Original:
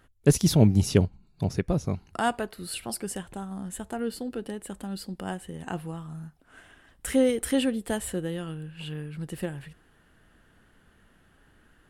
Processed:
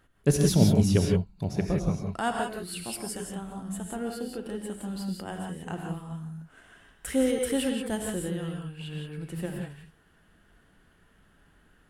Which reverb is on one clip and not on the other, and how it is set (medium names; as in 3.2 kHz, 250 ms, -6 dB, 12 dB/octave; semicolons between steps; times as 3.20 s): gated-style reverb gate 200 ms rising, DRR 1.5 dB; trim -3.5 dB